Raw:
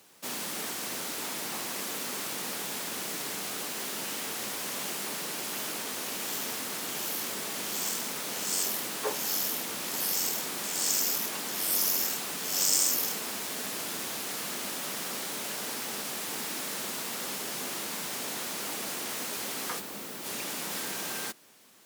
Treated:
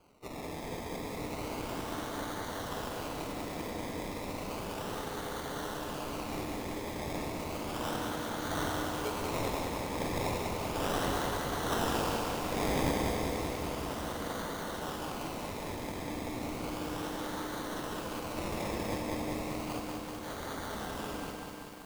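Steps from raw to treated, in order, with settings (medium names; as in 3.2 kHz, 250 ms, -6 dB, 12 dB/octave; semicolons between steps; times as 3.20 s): spectral gate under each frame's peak -15 dB strong; 18.36–18.98 s: rippled EQ curve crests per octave 1.3, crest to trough 17 dB; decimation with a swept rate 24×, swing 60% 0.33 Hz; FDN reverb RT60 2.3 s, low-frequency decay 1.05×, high-frequency decay 0.95×, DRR 5.5 dB; bit-crushed delay 194 ms, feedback 80%, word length 8-bit, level -4.5 dB; trim -5 dB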